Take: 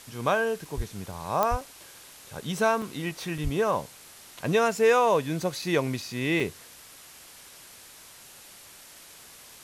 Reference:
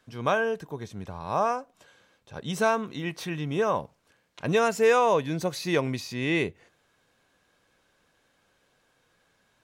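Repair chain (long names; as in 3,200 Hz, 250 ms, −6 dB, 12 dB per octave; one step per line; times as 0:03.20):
click removal
high-pass at the plosives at 0:00.76/0:01.50/0:03.43
repair the gap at 0:00.65/0:01.12/0:01.61/0:02.82/0:03.38/0:05.62/0:06.02/0:06.40, 2.8 ms
noise reduction from a noise print 19 dB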